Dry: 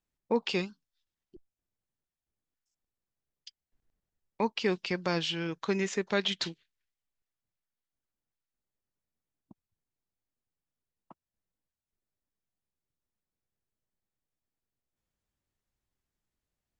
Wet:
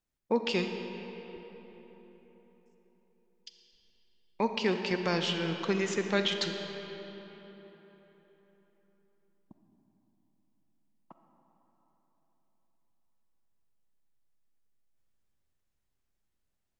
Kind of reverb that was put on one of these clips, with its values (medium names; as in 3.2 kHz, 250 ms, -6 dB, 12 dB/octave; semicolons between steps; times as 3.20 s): algorithmic reverb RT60 4.2 s, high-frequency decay 0.6×, pre-delay 5 ms, DRR 5 dB